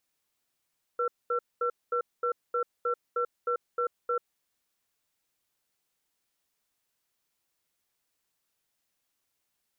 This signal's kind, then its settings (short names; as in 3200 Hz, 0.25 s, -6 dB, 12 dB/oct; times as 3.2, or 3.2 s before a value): cadence 483 Hz, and 1350 Hz, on 0.09 s, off 0.22 s, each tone -28 dBFS 3.33 s